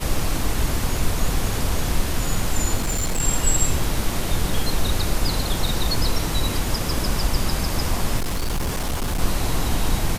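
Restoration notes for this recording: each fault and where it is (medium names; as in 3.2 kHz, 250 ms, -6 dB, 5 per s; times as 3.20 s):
2.77–3.21 s: clipped -18 dBFS
8.17–9.20 s: clipped -19.5 dBFS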